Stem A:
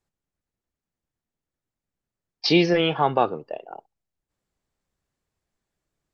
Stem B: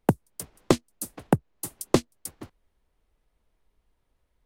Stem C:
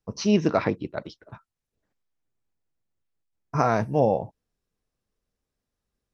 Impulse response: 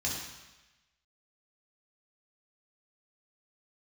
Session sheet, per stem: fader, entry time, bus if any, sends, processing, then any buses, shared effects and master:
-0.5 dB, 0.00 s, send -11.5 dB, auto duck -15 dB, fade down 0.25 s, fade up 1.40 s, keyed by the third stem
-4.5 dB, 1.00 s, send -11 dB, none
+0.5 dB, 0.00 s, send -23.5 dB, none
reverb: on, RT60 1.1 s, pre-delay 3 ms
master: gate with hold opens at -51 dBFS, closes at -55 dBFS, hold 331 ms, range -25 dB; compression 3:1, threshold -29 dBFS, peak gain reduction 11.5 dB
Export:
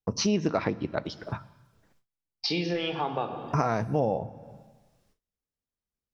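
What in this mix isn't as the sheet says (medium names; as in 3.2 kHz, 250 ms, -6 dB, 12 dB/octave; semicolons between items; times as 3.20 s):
stem B: muted; stem C +0.5 dB -> +12.5 dB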